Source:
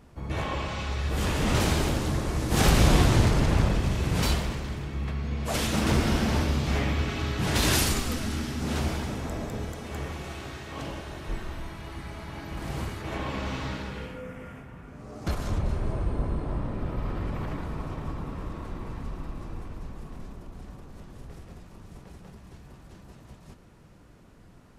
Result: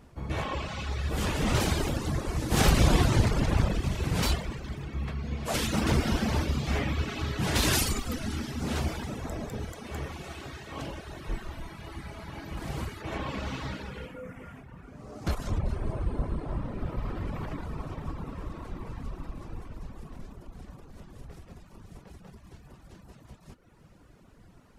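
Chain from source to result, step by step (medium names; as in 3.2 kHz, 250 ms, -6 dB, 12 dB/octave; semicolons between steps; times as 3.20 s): reverb removal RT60 0.89 s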